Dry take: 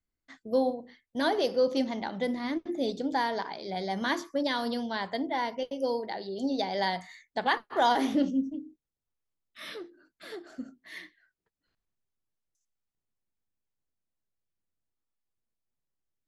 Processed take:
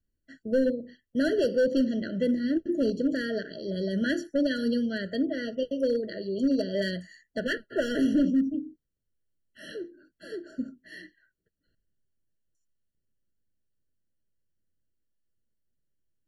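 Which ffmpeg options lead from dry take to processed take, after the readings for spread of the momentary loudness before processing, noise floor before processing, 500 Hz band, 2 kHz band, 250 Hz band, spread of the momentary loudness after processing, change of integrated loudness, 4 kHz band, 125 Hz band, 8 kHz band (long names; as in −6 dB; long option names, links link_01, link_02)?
18 LU, below −85 dBFS, +2.5 dB, −0.5 dB, +5.5 dB, 16 LU, +2.0 dB, −3.5 dB, +7.0 dB, can't be measured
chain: -af "lowshelf=frequency=460:gain=8.5,volume=19dB,asoftclip=hard,volume=-19dB,afftfilt=real='re*eq(mod(floor(b*sr/1024/670),2),0)':imag='im*eq(mod(floor(b*sr/1024/670),2),0)':win_size=1024:overlap=0.75"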